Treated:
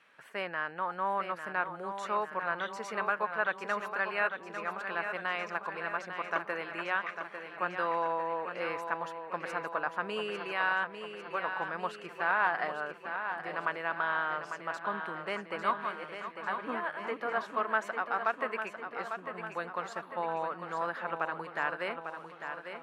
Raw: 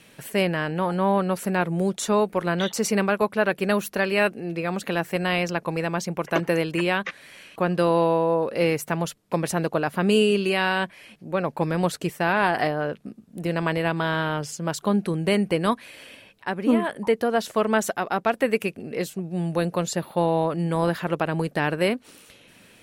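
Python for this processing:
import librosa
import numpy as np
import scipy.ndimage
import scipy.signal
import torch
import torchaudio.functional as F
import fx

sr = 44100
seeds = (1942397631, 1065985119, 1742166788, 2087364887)

y = fx.reverse_delay_fb(x, sr, ms=285, feedback_pct=51, wet_db=-6.5, at=(15.21, 17.47))
y = fx.bandpass_q(y, sr, hz=1300.0, q=2.0)
y = fx.echo_feedback(y, sr, ms=849, feedback_pct=59, wet_db=-8)
y = F.gain(torch.from_numpy(y), -2.0).numpy()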